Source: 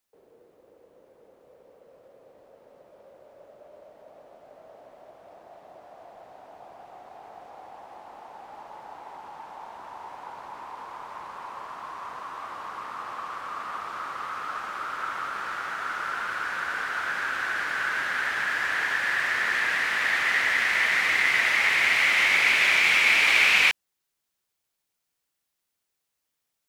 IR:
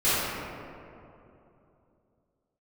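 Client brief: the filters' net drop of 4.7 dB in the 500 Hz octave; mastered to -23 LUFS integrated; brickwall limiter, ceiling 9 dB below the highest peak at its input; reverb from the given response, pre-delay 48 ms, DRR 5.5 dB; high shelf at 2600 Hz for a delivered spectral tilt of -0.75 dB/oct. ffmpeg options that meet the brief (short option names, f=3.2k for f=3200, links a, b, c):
-filter_complex "[0:a]equalizer=f=500:t=o:g=-6,highshelf=f=2.6k:g=-5,alimiter=limit=-18.5dB:level=0:latency=1,asplit=2[a][b];[1:a]atrim=start_sample=2205,adelay=48[c];[b][c]afir=irnorm=-1:irlink=0,volume=-22dB[d];[a][d]amix=inputs=2:normalize=0,volume=4.5dB"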